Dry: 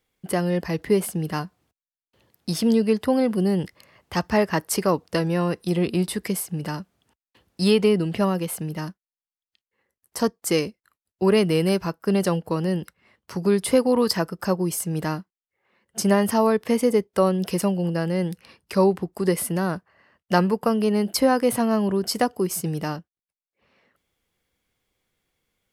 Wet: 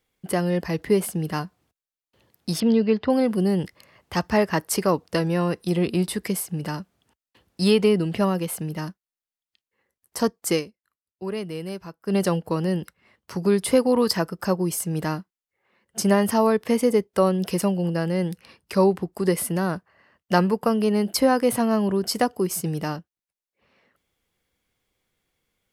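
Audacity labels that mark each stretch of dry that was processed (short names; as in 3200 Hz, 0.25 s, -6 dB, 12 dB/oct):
2.600000	3.100000	LPF 4300 Hz 24 dB/oct
10.530000	12.160000	dip -11.5 dB, fades 0.12 s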